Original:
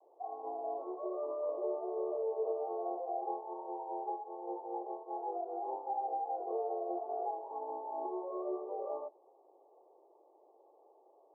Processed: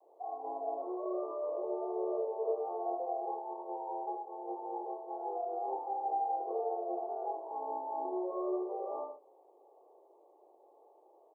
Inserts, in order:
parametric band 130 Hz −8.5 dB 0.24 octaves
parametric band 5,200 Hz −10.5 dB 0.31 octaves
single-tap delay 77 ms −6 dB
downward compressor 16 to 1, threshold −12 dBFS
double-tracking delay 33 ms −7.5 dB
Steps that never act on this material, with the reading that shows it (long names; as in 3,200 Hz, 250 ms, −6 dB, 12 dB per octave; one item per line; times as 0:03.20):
parametric band 130 Hz: nothing at its input below 250 Hz
parametric band 5,200 Hz: nothing at its input above 1,200 Hz
downward compressor, threshold −12 dBFS: peak of its input −24.0 dBFS